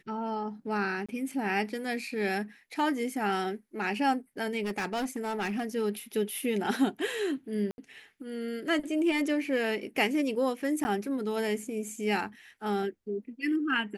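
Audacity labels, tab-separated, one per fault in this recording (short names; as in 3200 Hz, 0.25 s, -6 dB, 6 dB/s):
1.060000	1.090000	gap 26 ms
4.630000	5.670000	clipped -28 dBFS
7.710000	7.780000	gap 71 ms
10.840000	10.850000	gap 10 ms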